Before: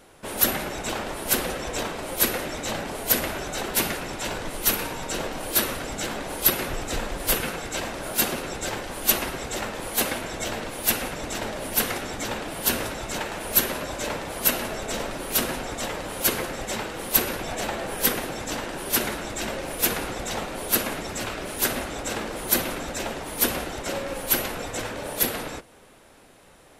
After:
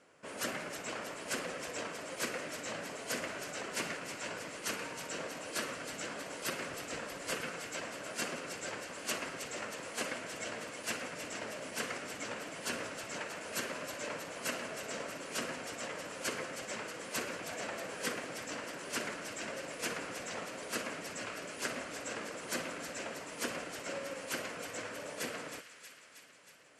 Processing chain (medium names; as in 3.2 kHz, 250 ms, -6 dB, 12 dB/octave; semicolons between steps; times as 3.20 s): cabinet simulation 180–7800 Hz, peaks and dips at 220 Hz -4 dB, 360 Hz -6 dB, 820 Hz -8 dB, 3.7 kHz -10 dB, 5.8 kHz -3 dB; feedback echo behind a high-pass 317 ms, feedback 67%, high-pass 1.8 kHz, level -8.5 dB; trim -8.5 dB